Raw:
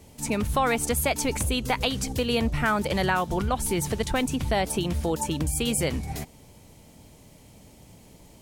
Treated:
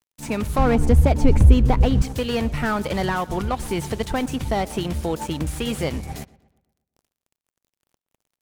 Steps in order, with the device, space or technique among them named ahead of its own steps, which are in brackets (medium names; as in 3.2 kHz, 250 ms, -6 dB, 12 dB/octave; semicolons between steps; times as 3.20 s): 0.58–2.02 s: tilt EQ -4 dB/octave; early transistor amplifier (crossover distortion -42.5 dBFS; slew-rate limiter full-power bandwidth 94 Hz); filtered feedback delay 120 ms, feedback 47%, low-pass 3.1 kHz, level -20.5 dB; trim +2.5 dB